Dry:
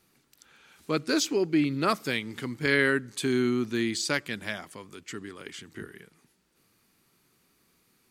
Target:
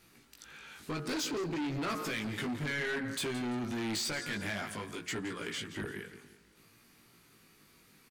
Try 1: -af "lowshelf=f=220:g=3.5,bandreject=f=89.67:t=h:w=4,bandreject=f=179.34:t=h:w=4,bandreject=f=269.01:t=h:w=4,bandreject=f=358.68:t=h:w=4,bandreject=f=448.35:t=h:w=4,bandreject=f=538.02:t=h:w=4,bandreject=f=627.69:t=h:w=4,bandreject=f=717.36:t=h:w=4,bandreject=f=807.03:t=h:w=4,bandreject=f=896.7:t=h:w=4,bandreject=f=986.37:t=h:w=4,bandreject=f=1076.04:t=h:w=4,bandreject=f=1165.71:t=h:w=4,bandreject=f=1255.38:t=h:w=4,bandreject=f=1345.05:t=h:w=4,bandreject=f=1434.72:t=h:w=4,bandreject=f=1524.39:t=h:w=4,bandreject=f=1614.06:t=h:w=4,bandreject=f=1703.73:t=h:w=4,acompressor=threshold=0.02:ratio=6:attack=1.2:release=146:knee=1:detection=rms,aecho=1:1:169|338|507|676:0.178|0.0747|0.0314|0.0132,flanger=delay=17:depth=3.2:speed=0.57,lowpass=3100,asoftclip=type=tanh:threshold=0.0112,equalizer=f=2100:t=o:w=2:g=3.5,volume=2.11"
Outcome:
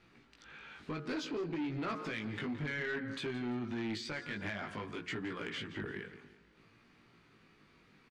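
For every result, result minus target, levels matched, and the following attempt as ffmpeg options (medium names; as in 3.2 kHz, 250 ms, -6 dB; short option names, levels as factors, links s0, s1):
compression: peak gain reduction +6 dB; 4 kHz band -3.0 dB
-af "lowshelf=f=220:g=3.5,bandreject=f=89.67:t=h:w=4,bandreject=f=179.34:t=h:w=4,bandreject=f=269.01:t=h:w=4,bandreject=f=358.68:t=h:w=4,bandreject=f=448.35:t=h:w=4,bandreject=f=538.02:t=h:w=4,bandreject=f=627.69:t=h:w=4,bandreject=f=717.36:t=h:w=4,bandreject=f=807.03:t=h:w=4,bandreject=f=896.7:t=h:w=4,bandreject=f=986.37:t=h:w=4,bandreject=f=1076.04:t=h:w=4,bandreject=f=1165.71:t=h:w=4,bandreject=f=1255.38:t=h:w=4,bandreject=f=1345.05:t=h:w=4,bandreject=f=1434.72:t=h:w=4,bandreject=f=1524.39:t=h:w=4,bandreject=f=1614.06:t=h:w=4,bandreject=f=1703.73:t=h:w=4,acompressor=threshold=0.0447:ratio=6:attack=1.2:release=146:knee=1:detection=rms,aecho=1:1:169|338|507|676:0.178|0.0747|0.0314|0.0132,flanger=delay=17:depth=3.2:speed=0.57,lowpass=3100,asoftclip=type=tanh:threshold=0.0112,equalizer=f=2100:t=o:w=2:g=3.5,volume=2.11"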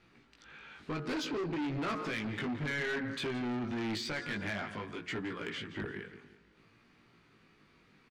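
4 kHz band -2.0 dB
-af "lowshelf=f=220:g=3.5,bandreject=f=89.67:t=h:w=4,bandreject=f=179.34:t=h:w=4,bandreject=f=269.01:t=h:w=4,bandreject=f=358.68:t=h:w=4,bandreject=f=448.35:t=h:w=4,bandreject=f=538.02:t=h:w=4,bandreject=f=627.69:t=h:w=4,bandreject=f=717.36:t=h:w=4,bandreject=f=807.03:t=h:w=4,bandreject=f=896.7:t=h:w=4,bandreject=f=986.37:t=h:w=4,bandreject=f=1076.04:t=h:w=4,bandreject=f=1165.71:t=h:w=4,bandreject=f=1255.38:t=h:w=4,bandreject=f=1345.05:t=h:w=4,bandreject=f=1434.72:t=h:w=4,bandreject=f=1524.39:t=h:w=4,bandreject=f=1614.06:t=h:w=4,bandreject=f=1703.73:t=h:w=4,acompressor=threshold=0.0447:ratio=6:attack=1.2:release=146:knee=1:detection=rms,aecho=1:1:169|338|507|676:0.178|0.0747|0.0314|0.0132,flanger=delay=17:depth=3.2:speed=0.57,asoftclip=type=tanh:threshold=0.0112,equalizer=f=2100:t=o:w=2:g=3.5,volume=2.11"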